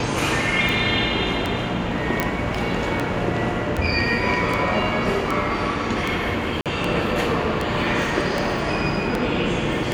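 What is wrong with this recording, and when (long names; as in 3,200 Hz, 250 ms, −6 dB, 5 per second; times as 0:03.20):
scratch tick 78 rpm
0:02.20: click −6 dBFS
0:06.61–0:06.66: drop-out 47 ms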